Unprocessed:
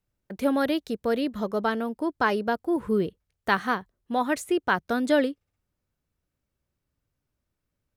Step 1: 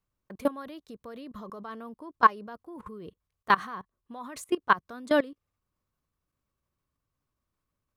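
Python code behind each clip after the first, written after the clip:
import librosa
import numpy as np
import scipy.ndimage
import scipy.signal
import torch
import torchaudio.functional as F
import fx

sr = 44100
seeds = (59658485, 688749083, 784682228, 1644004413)

y = fx.level_steps(x, sr, step_db=21)
y = fx.peak_eq(y, sr, hz=1100.0, db=13.0, octaves=0.26)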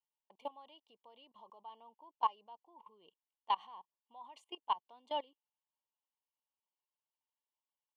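y = fx.double_bandpass(x, sr, hz=1600.0, octaves=1.7)
y = fx.notch_comb(y, sr, f0_hz=1300.0)
y = y * librosa.db_to_amplitude(-1.5)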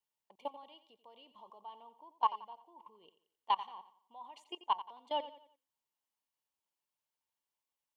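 y = fx.echo_feedback(x, sr, ms=88, feedback_pct=39, wet_db=-14.0)
y = y * librosa.db_to_amplitude(2.0)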